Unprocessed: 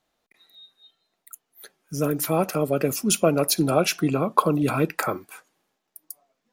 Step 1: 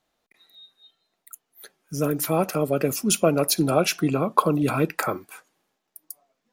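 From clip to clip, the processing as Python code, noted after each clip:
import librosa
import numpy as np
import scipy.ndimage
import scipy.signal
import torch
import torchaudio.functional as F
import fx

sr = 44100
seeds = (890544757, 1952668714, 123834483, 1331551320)

y = x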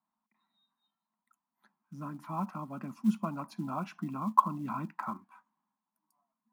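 y = fx.double_bandpass(x, sr, hz=460.0, octaves=2.2)
y = fx.quant_float(y, sr, bits=4)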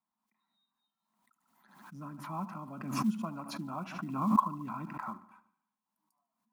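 y = fx.echo_feedback(x, sr, ms=74, feedback_pct=56, wet_db=-17)
y = fx.pre_swell(y, sr, db_per_s=60.0)
y = y * 10.0 ** (-4.0 / 20.0)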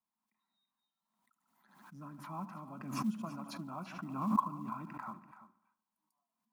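y = x + 10.0 ** (-14.5 / 20.0) * np.pad(x, (int(336 * sr / 1000.0), 0))[:len(x)]
y = y * 10.0 ** (-4.5 / 20.0)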